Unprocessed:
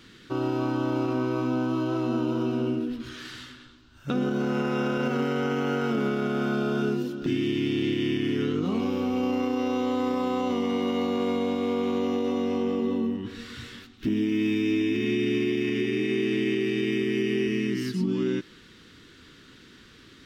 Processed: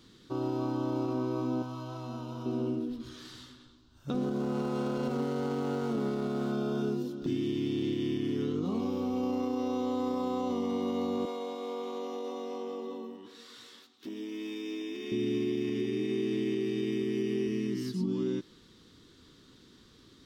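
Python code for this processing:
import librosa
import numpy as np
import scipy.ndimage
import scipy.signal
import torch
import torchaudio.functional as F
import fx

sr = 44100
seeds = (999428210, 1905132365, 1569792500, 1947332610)

y = fx.peak_eq(x, sr, hz=350.0, db=-14.5, octaves=1.1, at=(1.62, 2.46))
y = fx.running_max(y, sr, window=5, at=(4.14, 6.52))
y = fx.highpass(y, sr, hz=480.0, slope=12, at=(11.25, 15.12))
y = fx.band_shelf(y, sr, hz=2000.0, db=-8.5, octaves=1.3)
y = y * librosa.db_to_amplitude(-5.0)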